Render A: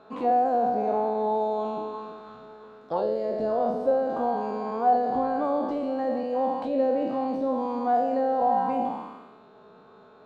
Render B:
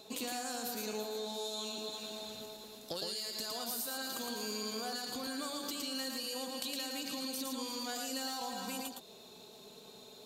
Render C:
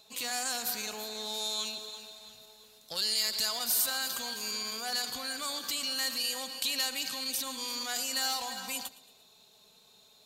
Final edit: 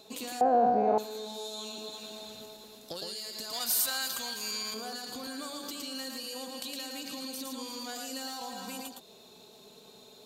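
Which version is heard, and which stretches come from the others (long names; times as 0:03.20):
B
0:00.41–0:00.98: punch in from A
0:03.53–0:04.74: punch in from C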